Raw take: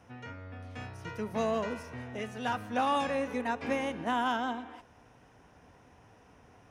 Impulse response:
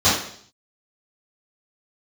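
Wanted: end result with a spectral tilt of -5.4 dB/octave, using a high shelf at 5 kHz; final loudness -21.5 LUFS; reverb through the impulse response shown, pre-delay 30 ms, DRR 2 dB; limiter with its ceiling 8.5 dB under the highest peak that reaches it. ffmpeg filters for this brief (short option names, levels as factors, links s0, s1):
-filter_complex "[0:a]highshelf=f=5000:g=-7.5,alimiter=level_in=1.5:limit=0.0631:level=0:latency=1,volume=0.668,asplit=2[s0][s1];[1:a]atrim=start_sample=2205,adelay=30[s2];[s1][s2]afir=irnorm=-1:irlink=0,volume=0.0708[s3];[s0][s3]amix=inputs=2:normalize=0,volume=4.73"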